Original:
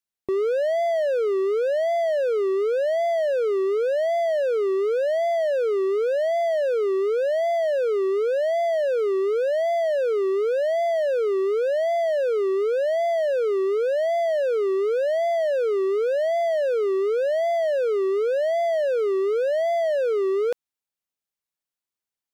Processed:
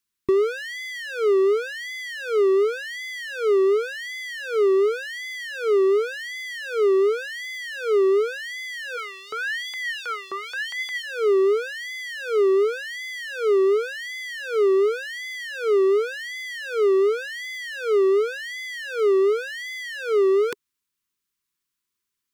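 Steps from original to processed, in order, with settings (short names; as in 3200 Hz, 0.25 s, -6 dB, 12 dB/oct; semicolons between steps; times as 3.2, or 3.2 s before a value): elliptic band-stop 410–990 Hz, stop band 80 dB; compressor, threshold -24 dBFS, peak gain reduction 3.5 dB; 8.96–11.02 LFO high-pass saw up 1.6 Hz -> 7 Hz 910–4200 Hz; gain +8 dB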